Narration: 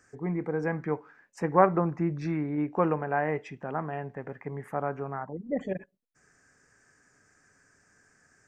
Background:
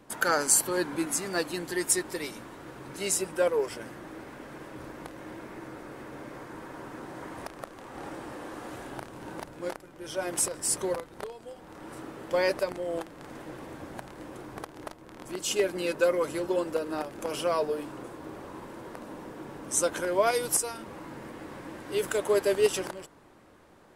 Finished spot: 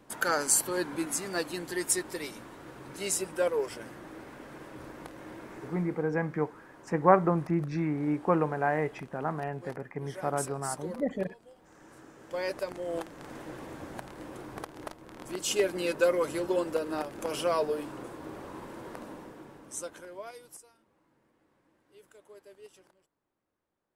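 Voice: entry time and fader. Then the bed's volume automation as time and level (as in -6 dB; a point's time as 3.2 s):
5.50 s, 0.0 dB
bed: 5.72 s -2.5 dB
6.09 s -11 dB
12.13 s -11 dB
13.02 s -0.5 dB
19.02 s -0.5 dB
20.86 s -28 dB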